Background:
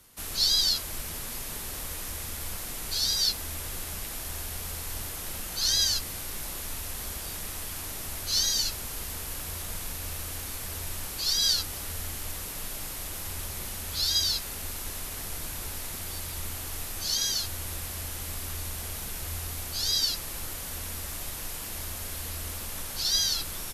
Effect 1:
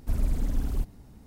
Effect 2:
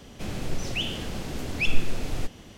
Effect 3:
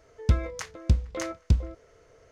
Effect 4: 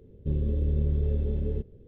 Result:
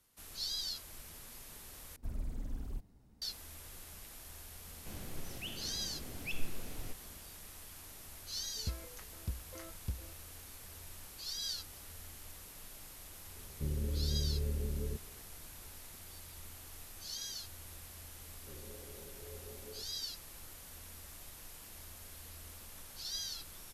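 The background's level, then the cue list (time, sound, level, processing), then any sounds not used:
background -15 dB
1.96 replace with 1 -13.5 dB
4.66 add 2 -15 dB
8.38 add 3 -18 dB
13.35 add 4 -9 dB
18.21 add 4 -7.5 dB + HPF 620 Hz

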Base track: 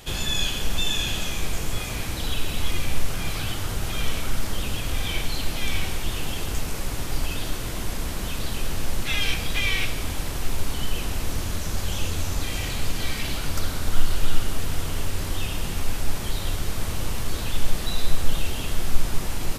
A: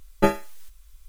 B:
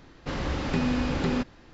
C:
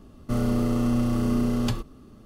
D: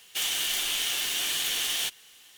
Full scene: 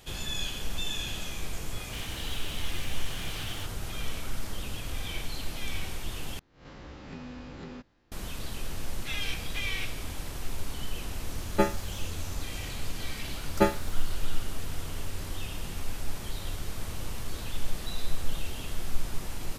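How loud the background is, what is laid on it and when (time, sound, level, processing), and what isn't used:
base track -8.5 dB
1.77 add D -6.5 dB + LPF 1700 Hz 6 dB/oct
6.39 replace with B -17.5 dB + spectral swells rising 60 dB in 0.48 s
11.36 add A -5 dB
13.38 add A -3.5 dB
not used: C

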